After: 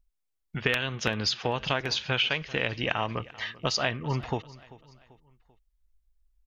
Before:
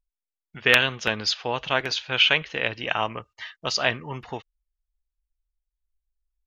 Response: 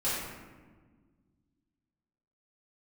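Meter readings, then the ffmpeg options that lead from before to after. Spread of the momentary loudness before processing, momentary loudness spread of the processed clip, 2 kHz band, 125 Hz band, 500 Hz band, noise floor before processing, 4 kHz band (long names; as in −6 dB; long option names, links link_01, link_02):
17 LU, 9 LU, −7.0 dB, +4.0 dB, −3.0 dB, below −85 dBFS, −5.5 dB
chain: -af "lowshelf=frequency=240:gain=8.5,acompressor=threshold=-27dB:ratio=6,aecho=1:1:390|780|1170:0.1|0.044|0.0194,volume=3dB"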